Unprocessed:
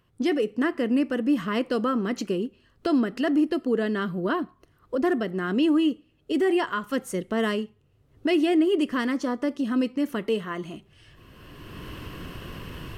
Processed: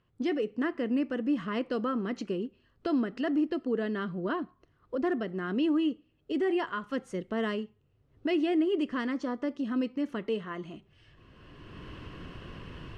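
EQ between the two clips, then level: air absorption 100 m; -5.5 dB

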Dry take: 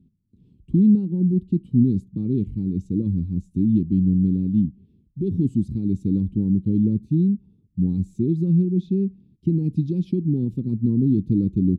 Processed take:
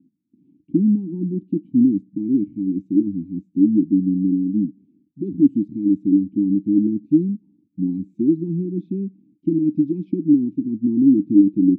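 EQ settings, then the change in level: vowel filter u; HPF 130 Hz 12 dB/oct; resonant low shelf 400 Hz +6.5 dB, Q 1.5; +5.5 dB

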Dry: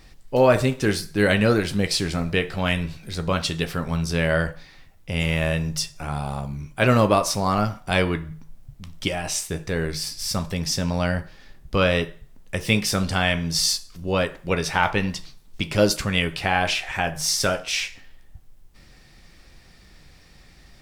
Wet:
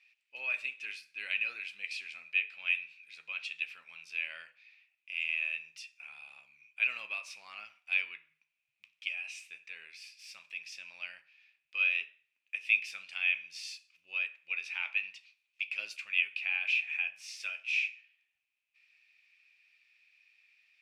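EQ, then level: band-pass 2500 Hz, Q 16; tilt +2.5 dB/oct; 0.0 dB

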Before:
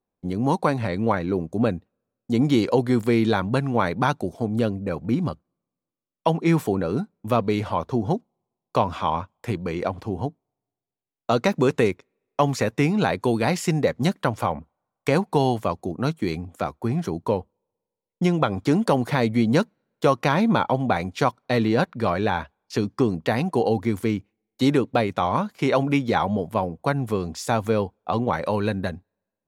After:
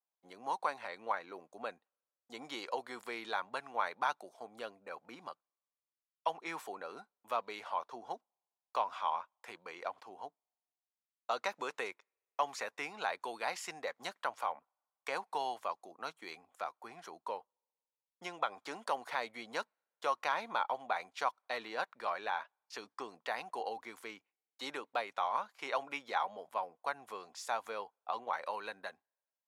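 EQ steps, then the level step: band-pass 880 Hz, Q 1.2; differentiator; +8.0 dB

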